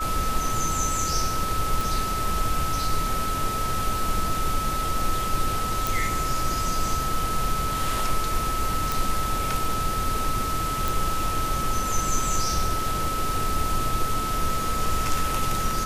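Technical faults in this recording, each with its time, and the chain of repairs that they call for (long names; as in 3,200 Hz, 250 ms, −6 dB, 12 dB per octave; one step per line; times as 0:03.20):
whistle 1,300 Hz −27 dBFS
0:01.81: click
0:05.87: click
0:08.92: click
0:10.88: click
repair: click removal
notch filter 1,300 Hz, Q 30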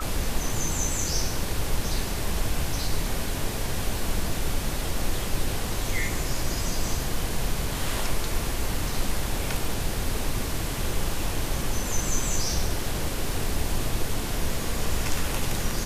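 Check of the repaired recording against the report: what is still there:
none of them is left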